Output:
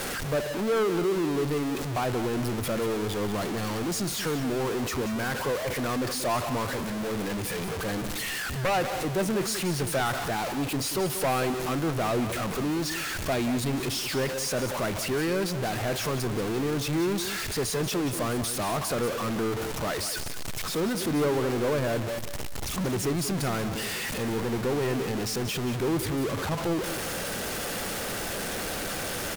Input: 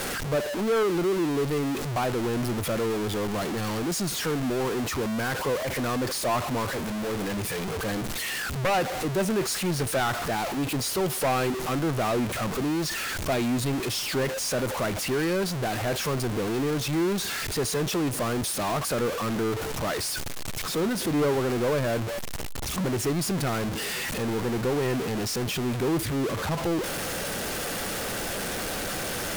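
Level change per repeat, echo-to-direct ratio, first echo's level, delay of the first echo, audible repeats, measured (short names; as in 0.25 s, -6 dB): -13.0 dB, -11.0 dB, -11.0 dB, 0.184 s, 2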